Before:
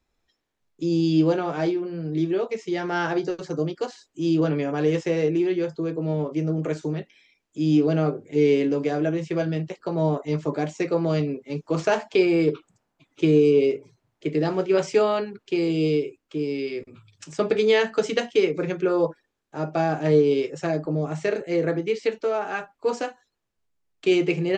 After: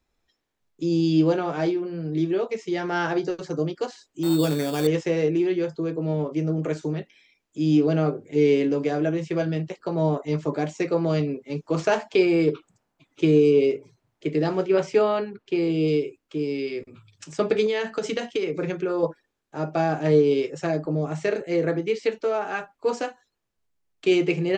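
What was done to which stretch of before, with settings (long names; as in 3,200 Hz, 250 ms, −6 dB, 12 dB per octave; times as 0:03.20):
0:04.23–0:04.87: sample-rate reduction 4,000 Hz
0:14.68–0:15.88: high-shelf EQ 5,500 Hz −11 dB
0:17.66–0:19.03: downward compressor, threshold −21 dBFS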